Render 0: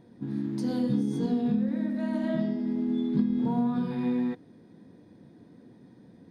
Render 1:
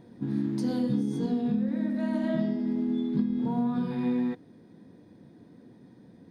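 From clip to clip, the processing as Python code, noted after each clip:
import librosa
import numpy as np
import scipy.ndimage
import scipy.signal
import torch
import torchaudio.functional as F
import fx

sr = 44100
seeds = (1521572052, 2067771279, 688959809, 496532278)

y = fx.rider(x, sr, range_db=3, speed_s=0.5)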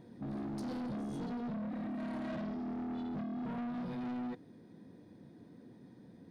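y = 10.0 ** (-34.0 / 20.0) * np.tanh(x / 10.0 ** (-34.0 / 20.0))
y = y * 10.0 ** (-3.0 / 20.0)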